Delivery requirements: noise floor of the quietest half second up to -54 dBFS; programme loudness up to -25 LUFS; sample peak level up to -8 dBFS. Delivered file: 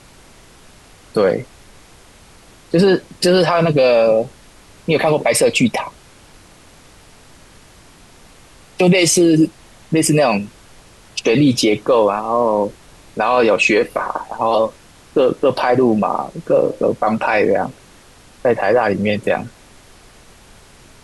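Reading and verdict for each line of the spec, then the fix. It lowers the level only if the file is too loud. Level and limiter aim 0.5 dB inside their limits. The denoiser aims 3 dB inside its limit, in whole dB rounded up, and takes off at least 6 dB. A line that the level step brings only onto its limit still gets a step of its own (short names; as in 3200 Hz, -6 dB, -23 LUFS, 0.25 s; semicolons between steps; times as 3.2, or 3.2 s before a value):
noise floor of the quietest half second -45 dBFS: fail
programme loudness -16.0 LUFS: fail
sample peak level -4.5 dBFS: fail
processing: gain -9.5 dB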